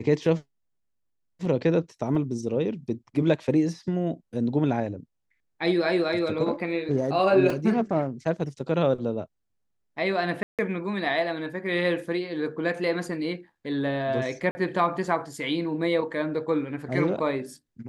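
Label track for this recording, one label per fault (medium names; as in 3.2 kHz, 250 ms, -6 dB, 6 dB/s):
2.150000	2.150000	dropout 2.3 ms
7.500000	7.500000	dropout 2.8 ms
10.430000	10.590000	dropout 157 ms
14.510000	14.550000	dropout 40 ms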